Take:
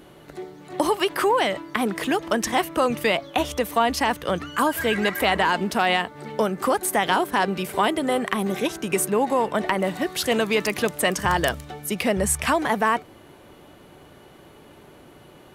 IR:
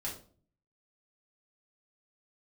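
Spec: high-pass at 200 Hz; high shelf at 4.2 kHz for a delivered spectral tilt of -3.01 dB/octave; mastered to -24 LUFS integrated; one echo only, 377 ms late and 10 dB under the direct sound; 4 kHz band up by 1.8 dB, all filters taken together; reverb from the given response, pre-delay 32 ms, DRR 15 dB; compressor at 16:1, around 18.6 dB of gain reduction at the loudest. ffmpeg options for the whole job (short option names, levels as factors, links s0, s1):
-filter_complex "[0:a]highpass=200,equalizer=f=4000:t=o:g=5.5,highshelf=f=4200:g=-5,acompressor=threshold=0.0178:ratio=16,aecho=1:1:377:0.316,asplit=2[s0][s1];[1:a]atrim=start_sample=2205,adelay=32[s2];[s1][s2]afir=irnorm=-1:irlink=0,volume=0.158[s3];[s0][s3]amix=inputs=2:normalize=0,volume=5.96"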